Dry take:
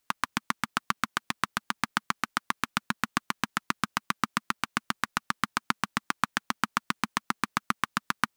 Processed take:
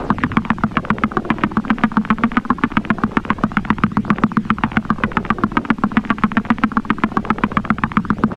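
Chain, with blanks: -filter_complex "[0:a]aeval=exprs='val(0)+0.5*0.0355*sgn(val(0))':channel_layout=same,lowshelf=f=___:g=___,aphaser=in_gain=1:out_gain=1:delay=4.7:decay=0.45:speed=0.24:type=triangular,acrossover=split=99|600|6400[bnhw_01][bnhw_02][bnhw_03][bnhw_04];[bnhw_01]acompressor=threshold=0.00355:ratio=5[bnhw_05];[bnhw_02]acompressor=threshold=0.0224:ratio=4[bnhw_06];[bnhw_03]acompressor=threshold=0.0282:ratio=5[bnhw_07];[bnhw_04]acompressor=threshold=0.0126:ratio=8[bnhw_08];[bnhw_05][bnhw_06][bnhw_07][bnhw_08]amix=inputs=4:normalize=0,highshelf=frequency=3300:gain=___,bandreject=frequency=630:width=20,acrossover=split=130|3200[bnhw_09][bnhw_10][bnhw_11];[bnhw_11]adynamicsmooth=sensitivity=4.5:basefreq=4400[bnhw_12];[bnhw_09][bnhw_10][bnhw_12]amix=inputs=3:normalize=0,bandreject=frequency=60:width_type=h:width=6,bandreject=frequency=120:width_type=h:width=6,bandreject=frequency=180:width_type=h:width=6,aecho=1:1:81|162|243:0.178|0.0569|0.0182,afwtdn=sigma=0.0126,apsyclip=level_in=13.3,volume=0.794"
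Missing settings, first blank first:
230, 5, -10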